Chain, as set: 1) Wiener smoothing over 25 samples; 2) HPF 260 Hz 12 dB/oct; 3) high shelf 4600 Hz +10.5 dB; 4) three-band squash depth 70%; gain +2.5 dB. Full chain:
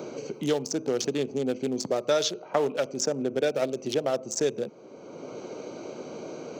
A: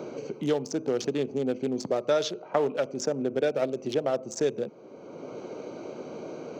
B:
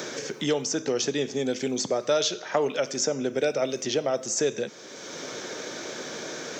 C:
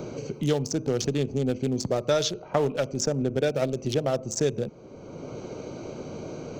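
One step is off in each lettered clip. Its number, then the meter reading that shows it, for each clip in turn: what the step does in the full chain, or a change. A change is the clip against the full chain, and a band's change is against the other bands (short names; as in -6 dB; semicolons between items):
3, 8 kHz band -6.5 dB; 1, 2 kHz band +4.0 dB; 2, 125 Hz band +11.0 dB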